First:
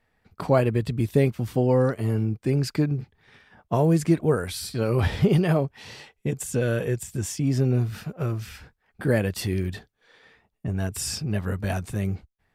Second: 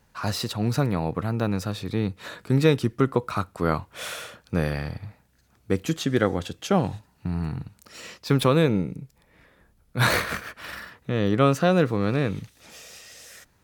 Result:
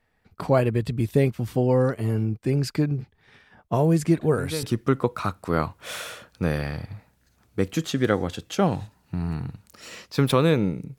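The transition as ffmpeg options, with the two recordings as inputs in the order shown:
-filter_complex "[1:a]asplit=2[a][b];[0:a]apad=whole_dur=10.98,atrim=end=10.98,atrim=end=4.632[c];[b]atrim=start=2.748:end=9.1[d];[a]atrim=start=2.33:end=2.75,asetpts=PTS-STARTPTS,volume=-12dB,afade=t=in:d=0.004:c=hsin,afade=t=out:st=0.416:d=0.004:c=hsin,adelay=185661S[e];[c][d]acrossfade=d=0.004:c1=hsin:c2=hsin[f];[f][e]amix=inputs=2:normalize=0"

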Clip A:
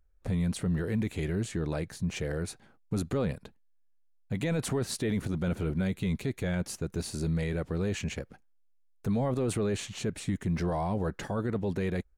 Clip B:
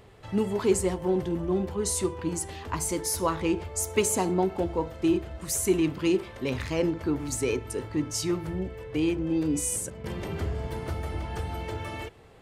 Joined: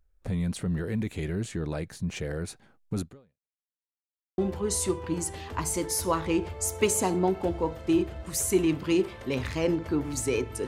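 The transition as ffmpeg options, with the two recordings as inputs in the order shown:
-filter_complex "[0:a]apad=whole_dur=10.67,atrim=end=10.67,asplit=2[a][b];[a]atrim=end=3.72,asetpts=PTS-STARTPTS,afade=t=out:st=3.01:d=0.71:c=exp[c];[b]atrim=start=3.72:end=4.38,asetpts=PTS-STARTPTS,volume=0[d];[1:a]atrim=start=1.53:end=7.82,asetpts=PTS-STARTPTS,afade=t=in:d=0.004:c=hsin[e];[c][d][e]concat=n=3:v=0:a=1"

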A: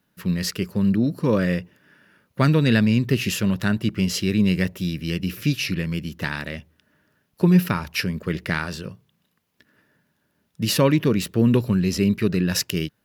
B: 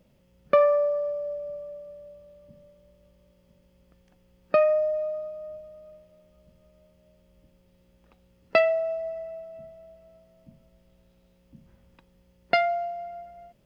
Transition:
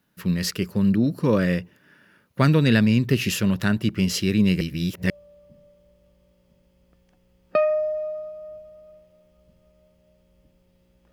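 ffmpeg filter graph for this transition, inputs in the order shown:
-filter_complex "[0:a]apad=whole_dur=11.12,atrim=end=11.12,asplit=2[a][b];[a]atrim=end=4.612[c];[b]atrim=start=4.608:end=5.102,asetpts=PTS-STARTPTS,areverse[d];[1:a]atrim=start=2.088:end=8.11[e];[c][d]acrossfade=d=0.004:c1=hsin:c2=hsin[f];[f][e]acrossfade=d=0.004:c1=hsin:c2=hsin"

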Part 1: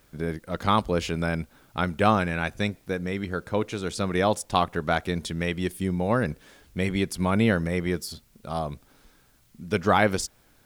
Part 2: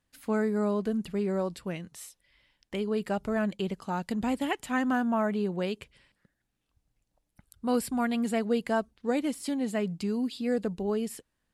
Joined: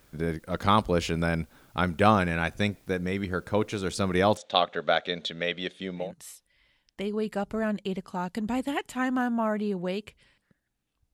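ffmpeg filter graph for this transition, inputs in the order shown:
-filter_complex "[0:a]asettb=1/sr,asplit=3[a][b][c];[a]atrim=end=4.374[d];[b]atrim=start=4.37:end=6.12,asetpts=PTS-STARTPTS,afade=t=in:d=0.004:c=qsin,afade=t=out:st=1.746:d=0.004:c=qsin,highpass=310,equalizer=f=340:t=q:w=4:g=-8,equalizer=f=570:t=q:w=4:g=7,equalizer=f=970:t=q:w=4:g=-9,equalizer=f=3.6k:t=q:w=4:g=9,equalizer=f=5.1k:t=q:w=4:g=-8,lowpass=f=5.6k:w=0.5412,lowpass=f=5.6k:w=1.3066[e];[c]atrim=start=6.116[f];[d][e]acrossfade=d=0.004:c1=hsin:c2=qsin[g];[g][f]acrossfade=d=0.004:c1=qsin:c2=hsin,apad=whole_dur=11.13,atrim=end=11.13,atrim=end=6.12,asetpts=PTS-STARTPTS[h];[1:a]atrim=start=1.7:end=6.87,asetpts=PTS-STARTPTS[i];[h][i]acrossfade=d=0.16:c1=tri:c2=tri"

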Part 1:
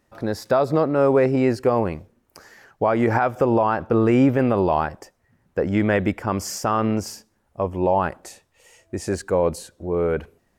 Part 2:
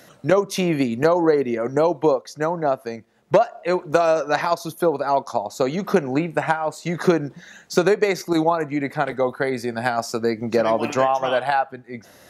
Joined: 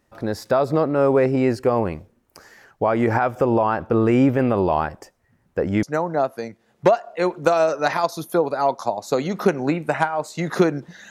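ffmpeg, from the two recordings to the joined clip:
-filter_complex "[0:a]apad=whole_dur=11.1,atrim=end=11.1,atrim=end=5.832[a];[1:a]atrim=start=2.308:end=7.58[b];[a][b]acrossfade=d=0.004:c1=hsin:c2=hsin"

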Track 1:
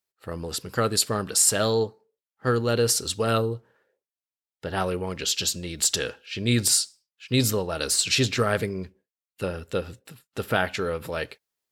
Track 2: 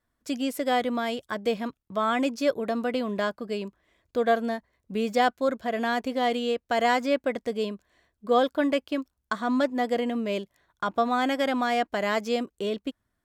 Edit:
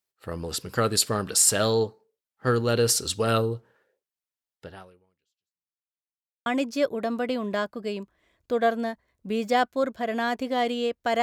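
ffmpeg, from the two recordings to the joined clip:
-filter_complex "[0:a]apad=whole_dur=11.22,atrim=end=11.22,asplit=2[a][b];[a]atrim=end=5.9,asetpts=PTS-STARTPTS,afade=t=out:st=4.54:d=1.36:c=exp[c];[b]atrim=start=5.9:end=6.46,asetpts=PTS-STARTPTS,volume=0[d];[1:a]atrim=start=2.11:end=6.87,asetpts=PTS-STARTPTS,afade=t=in:d=0.004:c=hsin[e];[c][d][e]concat=n=3:v=0:a=1"

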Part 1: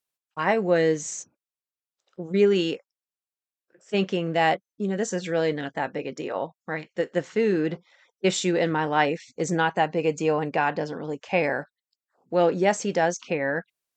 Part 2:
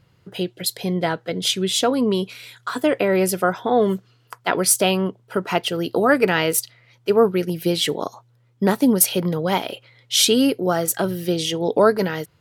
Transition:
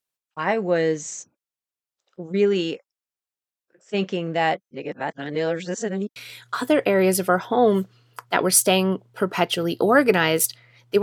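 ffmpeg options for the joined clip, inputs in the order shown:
-filter_complex "[0:a]apad=whole_dur=11.02,atrim=end=11.02,asplit=2[a][b];[a]atrim=end=4.712[c];[b]atrim=start=4.708:end=6.162,asetpts=PTS-STARTPTS,areverse[d];[1:a]atrim=start=2.298:end=7.16[e];[c][d]acrossfade=d=0.004:c1=hsin:c2=hsin[f];[f][e]acrossfade=d=0.004:c1=hsin:c2=hsin"

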